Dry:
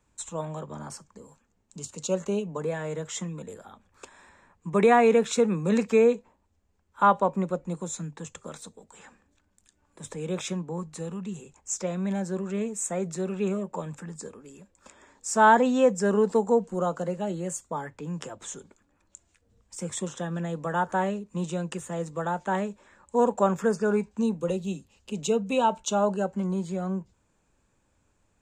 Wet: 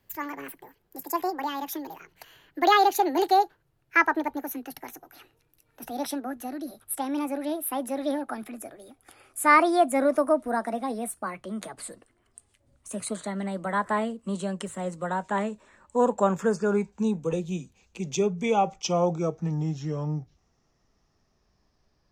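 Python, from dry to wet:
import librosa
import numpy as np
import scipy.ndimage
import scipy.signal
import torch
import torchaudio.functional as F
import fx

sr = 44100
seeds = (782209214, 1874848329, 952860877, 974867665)

y = fx.speed_glide(x, sr, from_pct=188, to_pct=69)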